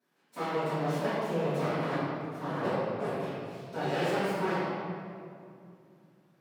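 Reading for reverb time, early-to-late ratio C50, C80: 2.5 s, -4.0 dB, -1.5 dB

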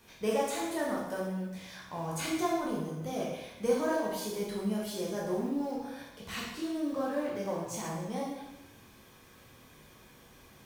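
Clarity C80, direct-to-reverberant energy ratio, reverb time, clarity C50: 4.5 dB, -5.0 dB, 0.95 s, 1.0 dB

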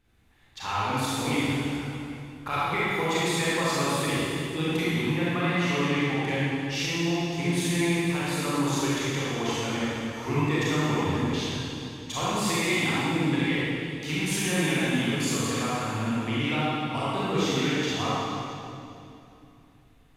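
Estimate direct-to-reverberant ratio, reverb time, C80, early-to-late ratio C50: -9.5 dB, 2.7 s, -3.5 dB, -6.5 dB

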